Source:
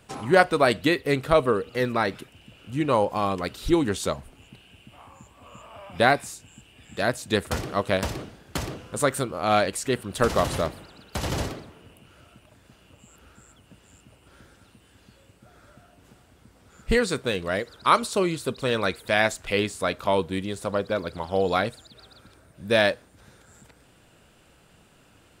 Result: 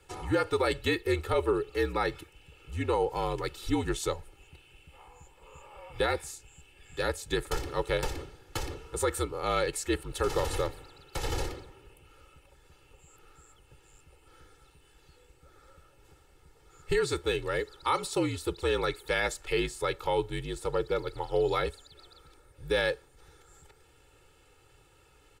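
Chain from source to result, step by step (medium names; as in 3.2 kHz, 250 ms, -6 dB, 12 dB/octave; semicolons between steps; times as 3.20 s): frequency shift -52 Hz; comb 2.3 ms, depth 98%; peak limiter -10.5 dBFS, peak gain reduction 8.5 dB; trim -7 dB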